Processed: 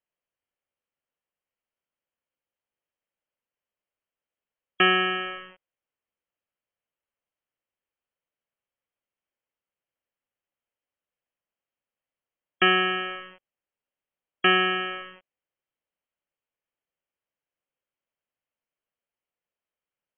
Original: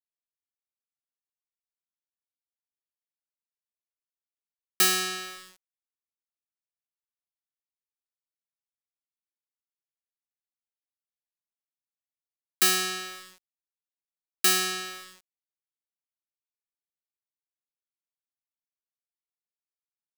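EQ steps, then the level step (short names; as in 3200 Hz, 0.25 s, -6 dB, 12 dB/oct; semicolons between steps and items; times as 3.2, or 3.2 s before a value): brick-wall FIR low-pass 3300 Hz; bell 540 Hz +7.5 dB 0.46 oct; +8.0 dB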